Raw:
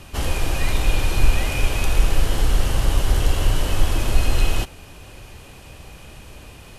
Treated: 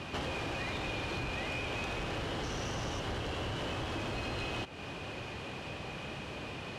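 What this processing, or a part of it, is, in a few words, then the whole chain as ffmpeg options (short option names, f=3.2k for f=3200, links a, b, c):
AM radio: -filter_complex "[0:a]asettb=1/sr,asplit=3[a][b][c];[a]atrim=end=2.434[d];[b]atrim=start=2.43:end=3,asetpts=PTS-STARTPTS,afade=t=in:d=0.004:c=qsin,afade=t=out:st=0.566:d=0.004:c=qsin,equalizer=f=5.9k:t=o:w=0.26:g=13[e];[c]atrim=start=2.996[f];[d][e]acrossfade=d=0.004:c1=hsin:c2=qsin[g];[g][f]acrossfade=d=0.004:c1=qsin:c2=hsin,highpass=130,lowpass=3.9k,acompressor=threshold=-36dB:ratio=8,asoftclip=type=tanh:threshold=-33.5dB,volume=4dB"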